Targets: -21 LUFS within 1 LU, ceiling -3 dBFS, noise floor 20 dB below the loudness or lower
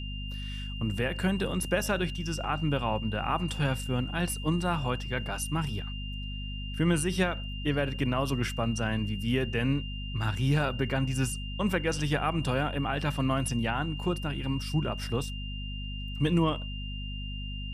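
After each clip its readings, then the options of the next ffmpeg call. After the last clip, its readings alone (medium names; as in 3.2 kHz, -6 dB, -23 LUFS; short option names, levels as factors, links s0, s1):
hum 50 Hz; highest harmonic 250 Hz; hum level -34 dBFS; steady tone 2.8 kHz; tone level -41 dBFS; loudness -30.5 LUFS; peak level -14.5 dBFS; loudness target -21.0 LUFS
-> -af "bandreject=f=50:t=h:w=4,bandreject=f=100:t=h:w=4,bandreject=f=150:t=h:w=4,bandreject=f=200:t=h:w=4,bandreject=f=250:t=h:w=4"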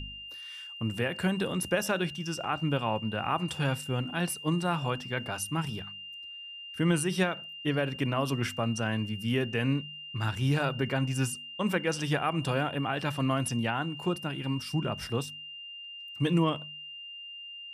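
hum not found; steady tone 2.8 kHz; tone level -41 dBFS
-> -af "bandreject=f=2800:w=30"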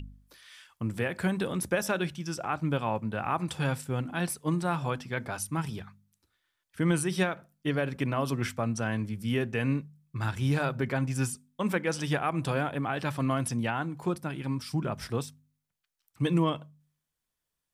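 steady tone not found; loudness -31.0 LUFS; peak level -15.5 dBFS; loudness target -21.0 LUFS
-> -af "volume=3.16"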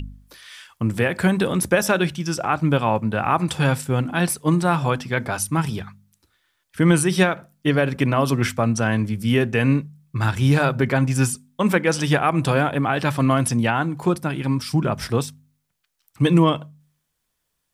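loudness -21.0 LUFS; peak level -5.5 dBFS; noise floor -75 dBFS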